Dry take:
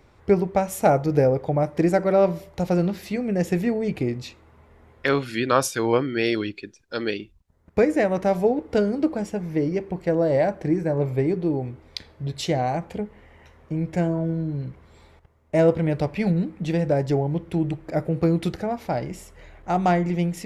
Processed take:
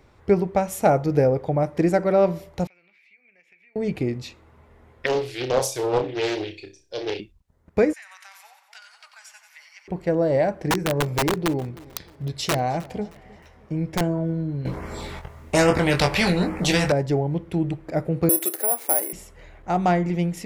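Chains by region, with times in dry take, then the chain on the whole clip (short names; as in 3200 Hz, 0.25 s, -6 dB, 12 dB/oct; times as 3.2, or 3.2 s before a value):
2.67–3.76 band-pass 2300 Hz, Q 14 + compressor 3:1, threshold -55 dBFS
5.06–7.2 fixed phaser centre 550 Hz, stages 4 + flutter echo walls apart 5.3 m, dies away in 0.31 s + Doppler distortion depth 0.44 ms
7.93–9.88 Bessel high-pass 1900 Hz, order 8 + compressor 5:1, threshold -41 dBFS + split-band echo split 1000 Hz, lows 0.252 s, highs 91 ms, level -8 dB
10.59–14.01 bell 5200 Hz +5.5 dB 0.22 oct + wrapped overs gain 15.5 dB + feedback echo 0.311 s, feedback 37%, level -21.5 dB
14.65–16.92 LFO notch sine 1.2 Hz 260–3900 Hz + doubler 22 ms -6 dB + spectral compressor 2:1
18.29–19.13 elliptic band-pass 330–8300 Hz + careless resampling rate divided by 4×, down none, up zero stuff
whole clip: dry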